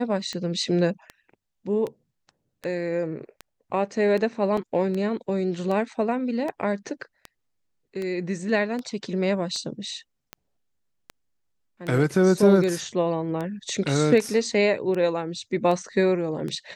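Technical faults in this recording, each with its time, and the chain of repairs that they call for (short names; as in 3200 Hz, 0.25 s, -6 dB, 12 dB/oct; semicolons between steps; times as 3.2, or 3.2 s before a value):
tick 78 rpm -19 dBFS
4.57 gap 4.2 ms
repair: de-click; interpolate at 4.57, 4.2 ms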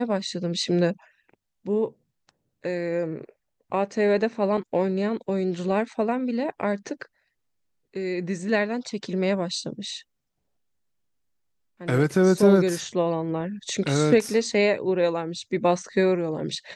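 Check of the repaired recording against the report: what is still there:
none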